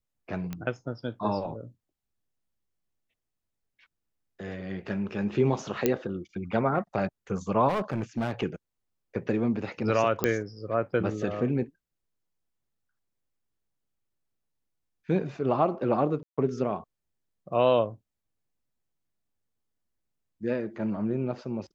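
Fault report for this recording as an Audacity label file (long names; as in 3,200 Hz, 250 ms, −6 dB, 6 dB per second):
0.530000	0.530000	click −21 dBFS
5.860000	5.860000	click −9 dBFS
7.680000	8.440000	clipping −24 dBFS
10.240000	10.240000	click −10 dBFS
16.230000	16.380000	drop-out 146 ms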